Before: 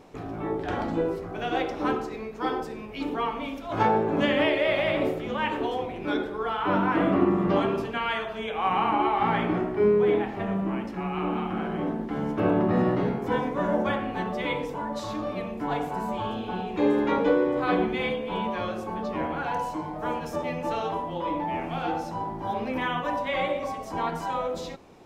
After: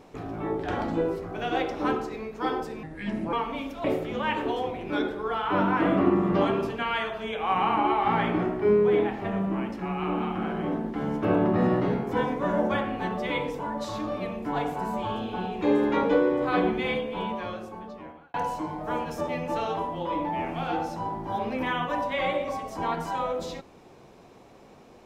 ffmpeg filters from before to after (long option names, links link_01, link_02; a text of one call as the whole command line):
ffmpeg -i in.wav -filter_complex "[0:a]asplit=5[link_01][link_02][link_03][link_04][link_05];[link_01]atrim=end=2.834[link_06];[link_02]atrim=start=2.83:end=3.2,asetpts=PTS-STARTPTS,asetrate=32634,aresample=44100[link_07];[link_03]atrim=start=3.196:end=3.712[link_08];[link_04]atrim=start=4.988:end=19.49,asetpts=PTS-STARTPTS,afade=type=out:start_time=13.142:duration=1.36[link_09];[link_05]atrim=start=19.49,asetpts=PTS-STARTPTS,afade=type=in:duration=0.004:curve=hsin[link_10];[link_06][link_07]acrossfade=duration=0.004:curve1=hsin:curve2=hsin[link_11];[link_11][link_08]acrossfade=duration=0.004:curve1=hsin:curve2=hsin[link_12];[link_09][link_10]concat=n=2:v=0:a=1[link_13];[link_12][link_13]acrossfade=duration=0.004:curve1=hsin:curve2=hsin" out.wav